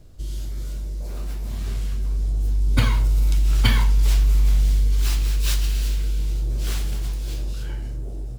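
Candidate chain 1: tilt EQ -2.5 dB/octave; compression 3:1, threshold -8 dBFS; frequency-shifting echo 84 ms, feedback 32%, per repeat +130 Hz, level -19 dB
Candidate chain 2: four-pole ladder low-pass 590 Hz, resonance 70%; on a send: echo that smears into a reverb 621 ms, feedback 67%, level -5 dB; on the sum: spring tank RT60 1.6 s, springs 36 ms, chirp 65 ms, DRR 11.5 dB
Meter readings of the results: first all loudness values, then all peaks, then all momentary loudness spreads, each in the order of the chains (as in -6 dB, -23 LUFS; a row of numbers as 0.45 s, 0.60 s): -15.5 LUFS, -37.0 LUFS; -1.5 dBFS, -17.0 dBFS; 9 LU, 11 LU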